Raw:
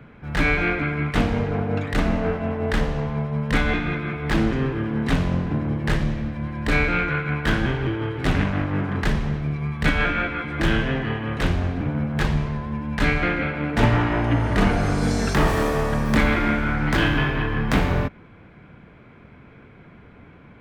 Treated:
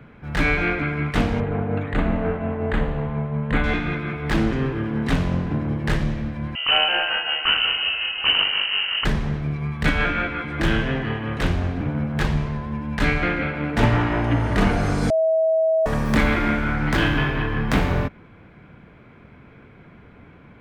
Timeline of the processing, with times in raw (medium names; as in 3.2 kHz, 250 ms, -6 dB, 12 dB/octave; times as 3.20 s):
1.40–3.64 s: boxcar filter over 8 samples
6.55–9.05 s: frequency inversion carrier 3 kHz
15.10–15.86 s: bleep 644 Hz -15.5 dBFS